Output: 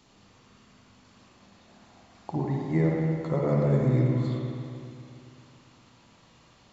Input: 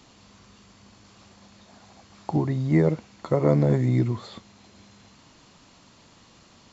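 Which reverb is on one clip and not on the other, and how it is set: spring tank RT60 2.5 s, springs 51/56 ms, chirp 70 ms, DRR -2.5 dB; gain -7 dB

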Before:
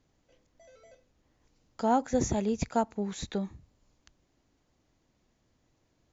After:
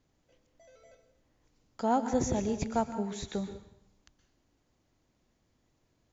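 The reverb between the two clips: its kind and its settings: plate-style reverb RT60 0.71 s, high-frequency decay 1×, pre-delay 0.11 s, DRR 9.5 dB; gain -2 dB

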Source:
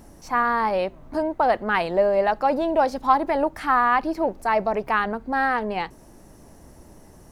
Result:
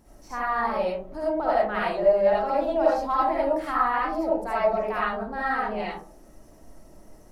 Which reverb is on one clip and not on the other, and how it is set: digital reverb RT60 0.47 s, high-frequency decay 0.35×, pre-delay 30 ms, DRR -7 dB; gain -11.5 dB

